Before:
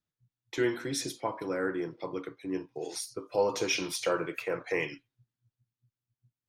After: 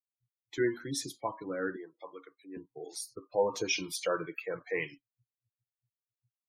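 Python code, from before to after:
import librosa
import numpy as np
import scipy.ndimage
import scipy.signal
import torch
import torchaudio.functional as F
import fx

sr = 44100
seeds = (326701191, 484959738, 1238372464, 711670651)

y = fx.bin_expand(x, sr, power=1.5)
y = fx.highpass(y, sr, hz=540.0, slope=12, at=(1.76, 2.57))
y = fx.spec_gate(y, sr, threshold_db=-30, keep='strong')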